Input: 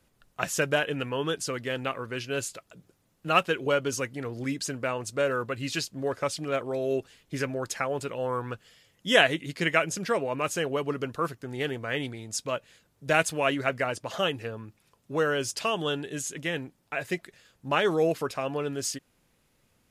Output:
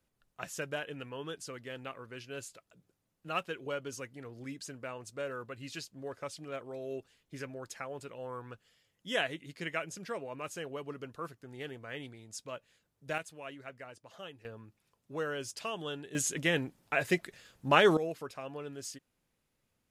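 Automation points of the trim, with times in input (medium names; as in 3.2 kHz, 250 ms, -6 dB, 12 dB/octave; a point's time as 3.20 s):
-12 dB
from 13.18 s -19.5 dB
from 14.45 s -10 dB
from 16.15 s +1.5 dB
from 17.97 s -11.5 dB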